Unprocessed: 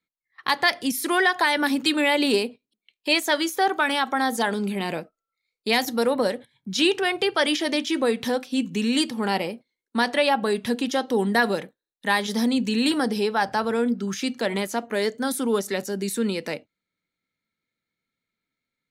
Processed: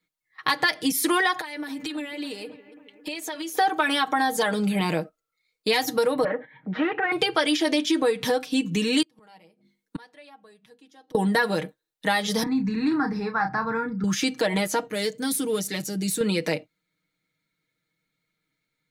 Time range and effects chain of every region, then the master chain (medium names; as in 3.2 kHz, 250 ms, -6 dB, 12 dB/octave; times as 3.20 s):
1.40–3.56 s: band-stop 1.5 kHz, Q 21 + compression 16:1, threshold -35 dBFS + bucket-brigade echo 273 ms, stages 4096, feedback 62%, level -15 dB
6.24–7.12 s: upward compressor, threshold -38 dBFS + valve stage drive 25 dB, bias 0.55 + cabinet simulation 200–2200 Hz, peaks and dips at 240 Hz +8 dB, 550 Hz +7 dB, 810 Hz +5 dB, 1.4 kHz +6 dB, 1.9 kHz +9 dB
9.02–11.15 s: hum notches 50/100/150/200/250/300/350 Hz + inverted gate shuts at -23 dBFS, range -33 dB
12.43–14.04 s: distance through air 260 m + static phaser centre 1.3 kHz, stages 4 + doubling 31 ms -7.5 dB
14.87–16.21 s: partial rectifier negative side -3 dB + high-pass 91 Hz 24 dB/octave + peaking EQ 940 Hz -13.5 dB 2 oct
whole clip: peaking EQ 140 Hz +2.5 dB; comb 6.4 ms, depth 76%; compression 3:1, threshold -24 dBFS; trim +3.5 dB